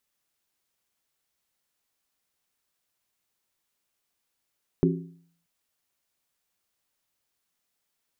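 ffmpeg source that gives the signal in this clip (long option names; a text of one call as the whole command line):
ffmpeg -f lavfi -i "aevalsrc='0.119*pow(10,-3*t/0.59)*sin(2*PI*169*t)+0.1*pow(10,-3*t/0.467)*sin(2*PI*269.4*t)+0.0841*pow(10,-3*t/0.404)*sin(2*PI*361*t)+0.0708*pow(10,-3*t/0.389)*sin(2*PI*388*t)':duration=0.63:sample_rate=44100" out.wav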